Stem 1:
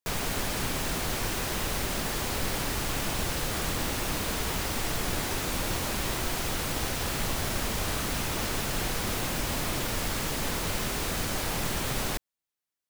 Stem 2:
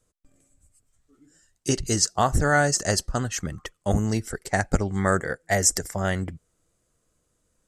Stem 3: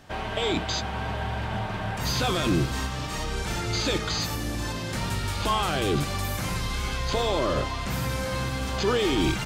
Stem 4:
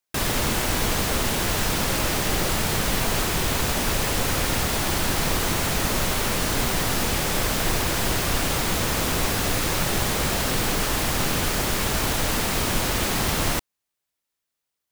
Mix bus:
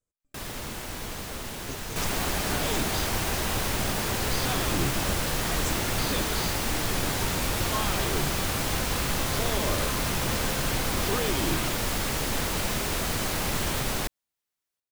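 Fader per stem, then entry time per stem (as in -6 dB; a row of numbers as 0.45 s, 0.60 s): +1.5 dB, -18.0 dB, -7.0 dB, -12.5 dB; 1.90 s, 0.00 s, 2.25 s, 0.20 s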